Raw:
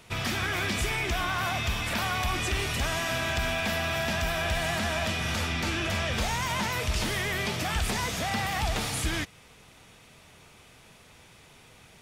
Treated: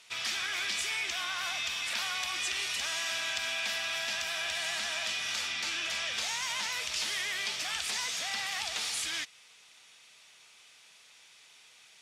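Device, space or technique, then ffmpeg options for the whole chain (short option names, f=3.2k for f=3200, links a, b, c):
piezo pickup straight into a mixer: -af "lowpass=5.4k,aderivative,volume=7.5dB"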